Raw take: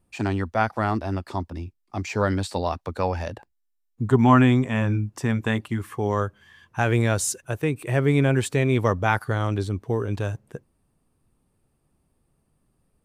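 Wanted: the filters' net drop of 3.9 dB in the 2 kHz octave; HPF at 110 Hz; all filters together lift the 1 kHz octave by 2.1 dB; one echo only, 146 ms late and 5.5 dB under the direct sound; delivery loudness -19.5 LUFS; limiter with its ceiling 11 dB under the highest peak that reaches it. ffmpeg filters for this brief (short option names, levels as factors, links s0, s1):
-af "highpass=110,equalizer=f=1000:t=o:g=4.5,equalizer=f=2000:t=o:g=-7.5,alimiter=limit=0.224:level=0:latency=1,aecho=1:1:146:0.531,volume=2"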